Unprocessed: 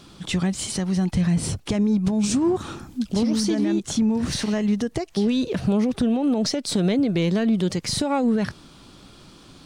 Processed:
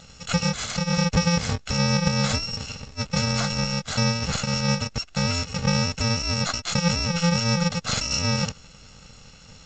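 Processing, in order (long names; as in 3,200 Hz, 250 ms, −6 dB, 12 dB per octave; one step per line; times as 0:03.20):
samples in bit-reversed order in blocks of 128 samples
level +4 dB
G.722 64 kbit/s 16,000 Hz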